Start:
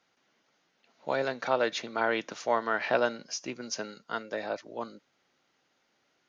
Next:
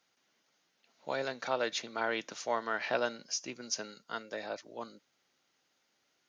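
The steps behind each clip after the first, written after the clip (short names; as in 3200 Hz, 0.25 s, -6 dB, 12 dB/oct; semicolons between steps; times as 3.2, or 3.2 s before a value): high shelf 3900 Hz +10 dB; gain -6 dB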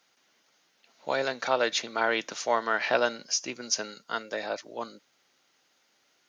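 low shelf 250 Hz -5.5 dB; gain +7.5 dB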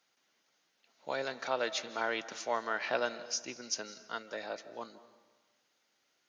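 digital reverb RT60 1.3 s, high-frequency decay 0.8×, pre-delay 0.12 s, DRR 15 dB; gain -7.5 dB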